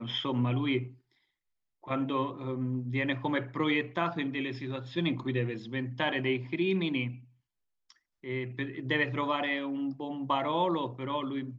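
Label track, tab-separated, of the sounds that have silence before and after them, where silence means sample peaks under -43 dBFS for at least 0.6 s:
1.840000	7.180000	sound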